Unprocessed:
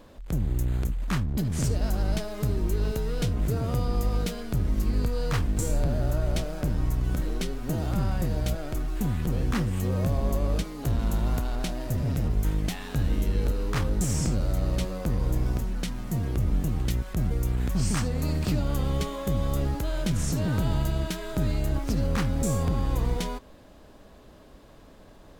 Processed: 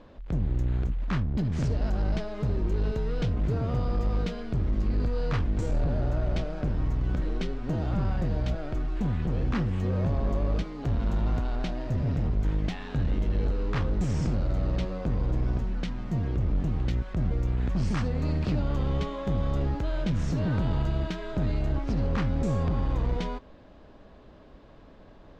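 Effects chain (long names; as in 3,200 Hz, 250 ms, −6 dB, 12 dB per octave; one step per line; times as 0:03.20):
hard clipping −21 dBFS, distortion −18 dB
high-frequency loss of the air 180 metres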